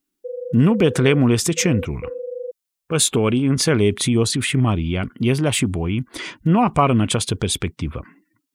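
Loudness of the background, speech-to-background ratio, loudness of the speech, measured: -32.5 LUFS, 13.5 dB, -19.0 LUFS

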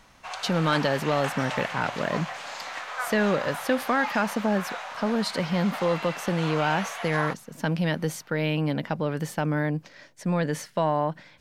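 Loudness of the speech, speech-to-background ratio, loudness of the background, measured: -27.0 LUFS, 7.0 dB, -34.0 LUFS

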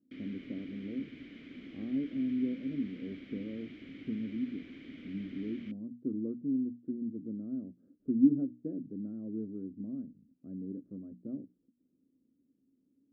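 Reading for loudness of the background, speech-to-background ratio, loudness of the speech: -49.0 LUFS, 12.0 dB, -37.0 LUFS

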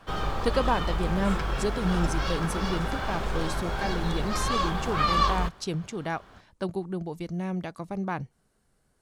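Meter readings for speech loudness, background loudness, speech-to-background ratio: -32.0 LUFS, -29.5 LUFS, -2.5 dB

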